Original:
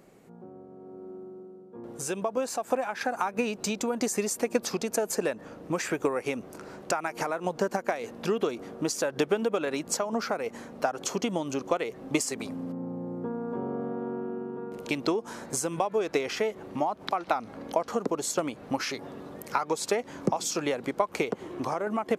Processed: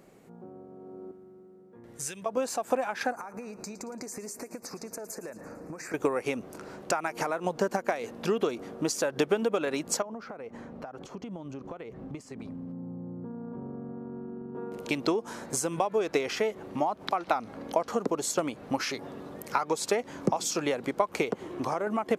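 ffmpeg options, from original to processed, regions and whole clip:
ffmpeg -i in.wav -filter_complex "[0:a]asettb=1/sr,asplit=3[link_01][link_02][link_03];[link_01]atrim=end=1.114[link_04];[link_02]atrim=start=1.11:end=2.26,asetpts=PTS-STARTPTS,afade=type=in:duration=0.004:curve=qsin,afade=type=out:start_time=1.146:duration=0.004:curve=qsin,acrossover=split=140|3000[link_05][link_06][link_07];[link_06]acompressor=threshold=-57dB:ratio=2:attack=3.2:release=140:knee=2.83:detection=peak[link_08];[link_05][link_08][link_07]amix=inputs=3:normalize=0,equalizer=frequency=1900:width=2.5:gain=12[link_09];[link_03]atrim=start=2.256[link_10];[link_04][link_09]acrossfade=duration=0.004:curve1=hsin:curve2=qsin[link_11];[link_11][link_10]acrossfade=duration=0.004:curve1=qsin:curve2=hsin,asettb=1/sr,asplit=3[link_12][link_13][link_14];[link_12]atrim=end=3.114[link_15];[link_13]atrim=start=3.11:end=5.94,asetpts=PTS-STARTPTS,afade=type=in:duration=0.004:curve=qsin,afade=type=out:start_time=2.826:duration=0.004:curve=qsin,acompressor=threshold=-36dB:ratio=8:attack=3.2:release=140:knee=1:detection=peak,asuperstop=centerf=3200:order=4:qfactor=1.6,aecho=1:1:113|226|339|452|565|678:0.178|0.105|0.0619|0.0365|0.0215|0.0127,atrim=end_sample=124803[link_16];[link_14]atrim=start=5.936[link_17];[link_15][link_16]acrossfade=duration=0.004:curve1=hsin:curve2=qsin[link_18];[link_18][link_17]acrossfade=duration=0.004:curve1=qsin:curve2=hsin,asettb=1/sr,asplit=3[link_19][link_20][link_21];[link_19]atrim=end=10.024[link_22];[link_20]atrim=start=10.02:end=14.55,asetpts=PTS-STARTPTS,afade=type=in:duration=0.004:curve=qsin,afade=type=out:start_time=4.526:duration=0.004:curve=qsin,asubboost=boost=3.5:cutoff=240,acompressor=threshold=-37dB:ratio=4:attack=3.2:release=140:knee=1:detection=peak,lowpass=frequency=1400:poles=1[link_23];[link_21]atrim=start=14.546[link_24];[link_22][link_23]acrossfade=duration=0.004:curve1=hsin:curve2=qsin[link_25];[link_25][link_24]acrossfade=duration=0.004:curve1=qsin:curve2=hsin" out.wav

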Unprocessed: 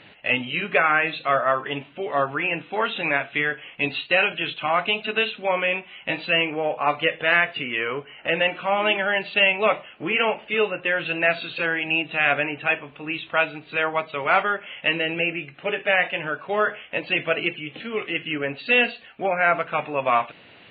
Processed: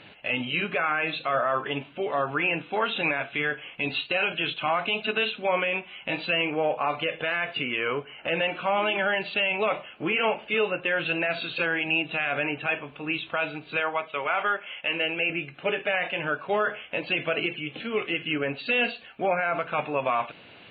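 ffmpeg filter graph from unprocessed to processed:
ffmpeg -i in.wav -filter_complex "[0:a]asettb=1/sr,asplit=3[link_01][link_02][link_03];[link_01]atrim=end=13.804[link_04];[link_02]atrim=start=13.8:end=15.3,asetpts=PTS-STARTPTS,afade=type=in:duration=0.004:curve=qsin,afade=type=out:start_time=1.496:duration=0.004:curve=qsin,agate=range=-33dB:threshold=-41dB:ratio=3:release=100:detection=peak,asuperstop=centerf=4200:order=4:qfactor=3.3,lowshelf=frequency=300:gain=-11.5[link_05];[link_03]atrim=start=15.296[link_06];[link_04][link_05]acrossfade=duration=0.004:curve1=hsin:curve2=qsin[link_07];[link_07][link_06]acrossfade=duration=0.004:curve1=qsin:curve2=hsin,alimiter=limit=-15dB:level=0:latency=1:release=45,bandreject=frequency=1900:width=11" out.wav

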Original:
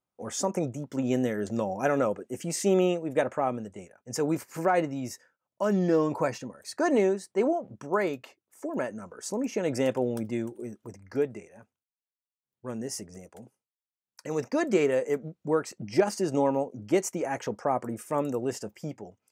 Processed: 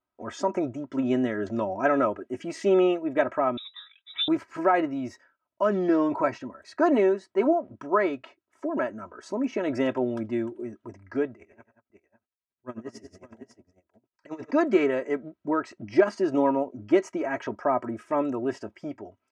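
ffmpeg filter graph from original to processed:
ffmpeg -i in.wav -filter_complex "[0:a]asettb=1/sr,asplit=3[link_01][link_02][link_03];[link_01]atrim=end=3.574[link_04];[link_02]atrim=start=3.57:end=4.28,asetpts=PTS-STARTPTS,afade=type=in:duration=0.004:curve=qsin,afade=type=out:start_time=0.706:duration=0.004:curve=qsin,equalizer=frequency=110:width_type=o:width=0.72:gain=-8,lowpass=frequency=3400:width_type=q:width=0.5098,lowpass=frequency=3400:width_type=q:width=0.6013,lowpass=frequency=3400:width_type=q:width=0.9,lowpass=frequency=3400:width_type=q:width=2.563,afreqshift=-4000[link_05];[link_03]atrim=start=4.276[link_06];[link_04][link_05]acrossfade=duration=0.004:curve1=hsin:curve2=qsin[link_07];[link_07][link_06]acrossfade=duration=0.004:curve1=qsin:curve2=hsin,asettb=1/sr,asplit=3[link_08][link_09][link_10];[link_08]atrim=end=11.334[link_11];[link_09]atrim=start=11.33:end=14.51,asetpts=PTS-STARTPTS,afade=type=in:duration=0.004:curve=qsin,afade=type=out:start_time=3.176:duration=0.004:curve=qsin,aecho=1:1:95|183|569:0.237|0.299|0.282,atrim=end_sample=140238,aeval=exprs='val(0)*pow(10,-20*(0.5-0.5*cos(2*PI*11*n/s))/20)':channel_layout=same[link_12];[link_10]atrim=start=14.506[link_13];[link_11][link_12]acrossfade=duration=0.004:curve1=hsin:curve2=qsin[link_14];[link_14][link_13]acrossfade=duration=0.004:curve1=qsin:curve2=hsin,lowpass=3200,equalizer=frequency=1400:width=1.5:gain=4,aecho=1:1:3.1:0.71" out.wav

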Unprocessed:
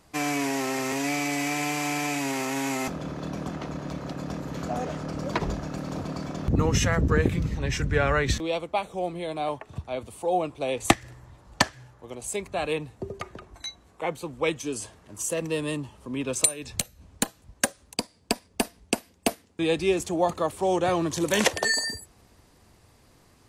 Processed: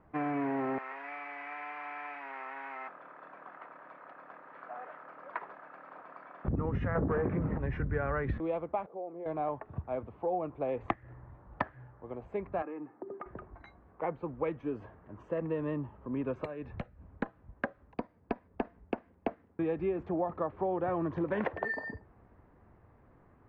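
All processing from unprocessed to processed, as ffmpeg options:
ffmpeg -i in.wav -filter_complex "[0:a]asettb=1/sr,asplit=3[link_01][link_02][link_03];[link_01]atrim=end=0.784[link_04];[link_02]atrim=start=0.78:end=6.45,asetpts=PTS-STARTPTS,afade=type=in:duration=0.004:curve=qsin,afade=type=out:start_time=5.666:duration=0.004:curve=qsin,highpass=1200,highshelf=frequency=8300:gain=-10[link_05];[link_03]atrim=start=6.446[link_06];[link_04][link_05]acrossfade=duration=0.004:curve1=hsin:curve2=qsin[link_07];[link_07][link_06]acrossfade=duration=0.004:curve1=qsin:curve2=hsin,asettb=1/sr,asplit=3[link_08][link_09][link_10];[link_08]atrim=end=6.954[link_11];[link_09]atrim=start=6.95:end=7.58,asetpts=PTS-STARTPTS,afade=type=in:duration=0.004:curve=qsin,afade=type=out:start_time=0.626:duration=0.004:curve=qsin,highshelf=frequency=2300:gain=-9,asplit=2[link_12][link_13];[link_13]highpass=frequency=720:poles=1,volume=27dB,asoftclip=type=tanh:threshold=-8.5dB[link_14];[link_12][link_14]amix=inputs=2:normalize=0,lowpass=frequency=1100:poles=1,volume=-6dB[link_15];[link_10]atrim=start=7.576[link_16];[link_11][link_15]acrossfade=duration=0.004:curve1=hsin:curve2=qsin[link_17];[link_17][link_16]acrossfade=duration=0.004:curve1=qsin:curve2=hsin,asettb=1/sr,asplit=3[link_18][link_19][link_20];[link_18]atrim=end=8.864[link_21];[link_19]atrim=start=8.86:end=9.26,asetpts=PTS-STARTPTS,afade=type=in:duration=0.004:curve=qsin,afade=type=out:start_time=0.396:duration=0.004:curve=qsin,aemphasis=mode=production:type=bsi,acompressor=threshold=-32dB:ratio=3:attack=3.2:release=140:knee=1:detection=peak,bandpass=frequency=460:width_type=q:width=1.2[link_22];[link_20]atrim=start=9.256[link_23];[link_21][link_22]acrossfade=duration=0.004:curve1=hsin:curve2=qsin[link_24];[link_24][link_23]acrossfade=duration=0.004:curve1=qsin:curve2=hsin,asettb=1/sr,asplit=3[link_25][link_26][link_27];[link_25]atrim=end=12.624[link_28];[link_26]atrim=start=12.62:end=13.26,asetpts=PTS-STARTPTS,afade=type=in:duration=0.004:curve=qsin,afade=type=out:start_time=0.636:duration=0.004:curve=qsin,highpass=frequency=210:width=0.5412,highpass=frequency=210:width=1.3066,equalizer=frequency=310:width_type=q:width=4:gain=7,equalizer=frequency=460:width_type=q:width=4:gain=-7,equalizer=frequency=1200:width_type=q:width=4:gain=3,lowpass=frequency=2300:width=0.5412,lowpass=frequency=2300:width=1.3066,aecho=1:1:2.4:0.36,atrim=end_sample=28224,acompressor=threshold=-34dB:ratio=10:attack=3.2:release=140:knee=1:detection=peak[link_29];[link_27]atrim=start=13.256[link_30];[link_28][link_29]acrossfade=duration=0.004:curve1=hsin:curve2=qsin[link_31];[link_31][link_30]acrossfade=duration=0.004:curve1=qsin:curve2=hsin,lowpass=frequency=1700:width=0.5412,lowpass=frequency=1700:width=1.3066,acompressor=threshold=-26dB:ratio=6,volume=-2.5dB" out.wav

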